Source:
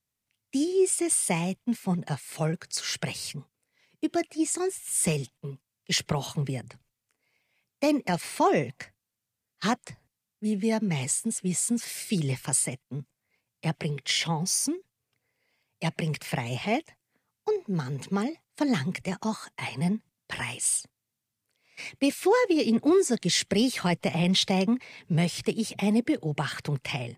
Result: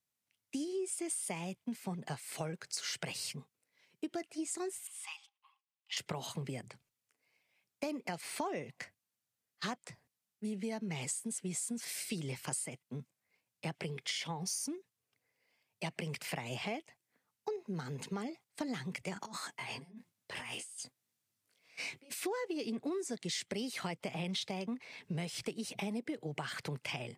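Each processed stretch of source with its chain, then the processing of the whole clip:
0:04.87–0:05.97: Chebyshev high-pass with heavy ripple 780 Hz, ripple 9 dB + spectral tilt −3 dB per octave
0:19.14–0:22.14: compressor whose output falls as the input rises −38 dBFS + micro pitch shift up and down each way 16 cents
whole clip: high-pass filter 200 Hz 6 dB per octave; downward compressor, threshold −32 dBFS; level −3.5 dB

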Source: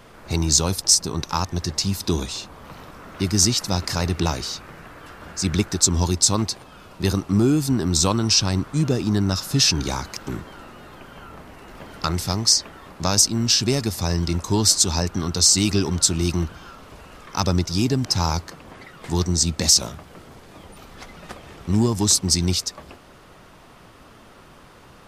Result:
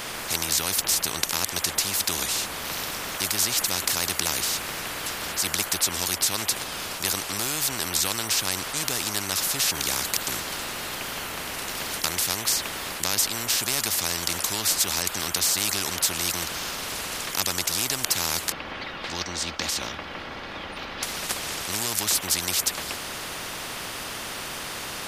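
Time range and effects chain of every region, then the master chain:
0:18.52–0:21.03: high-frequency loss of the air 300 metres + comb filter 3.6 ms, depth 47%
whole clip: spectral tilt +2.5 dB per octave; every bin compressed towards the loudest bin 4 to 1; level −6.5 dB

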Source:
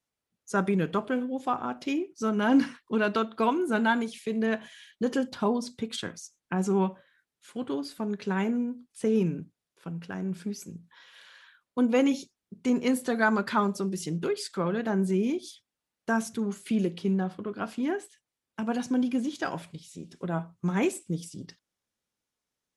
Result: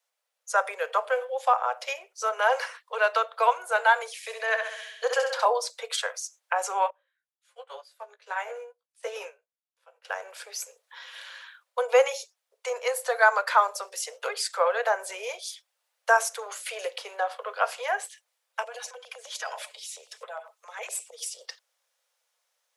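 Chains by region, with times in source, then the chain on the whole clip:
0:04.16–0:05.45: meter weighting curve A + flutter between parallel walls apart 11.4 metres, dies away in 0.73 s
0:06.90–0:10.05: double-tracking delay 17 ms −6 dB + expander for the loud parts 2.5 to 1, over −37 dBFS
0:18.64–0:21.27: comb filter 4.7 ms, depth 47% + downward compressor 10 to 1, threshold −35 dBFS + auto-filter notch saw down 9.8 Hz 400–2,000 Hz
whole clip: Butterworth high-pass 480 Hz 96 dB per octave; dynamic equaliser 3,400 Hz, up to −5 dB, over −51 dBFS, Q 1.8; speech leveller within 3 dB 2 s; level +7.5 dB

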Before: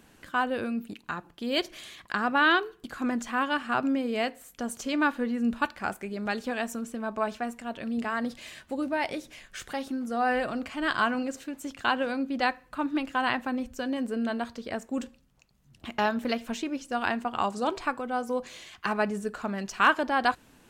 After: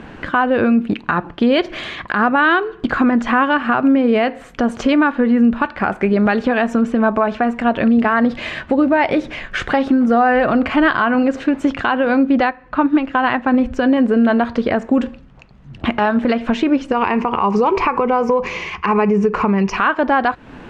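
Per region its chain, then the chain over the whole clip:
0:12.49–0:13.54: low-pass filter 7,900 Hz + expander for the loud parts, over −36 dBFS
0:16.92–0:19.77: EQ curve with evenly spaced ripples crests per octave 0.8, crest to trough 12 dB + downward compressor 4 to 1, threshold −32 dBFS
whole clip: low-pass filter 2,200 Hz 12 dB per octave; downward compressor, threshold −33 dBFS; boost into a limiter +27 dB; level −4.5 dB

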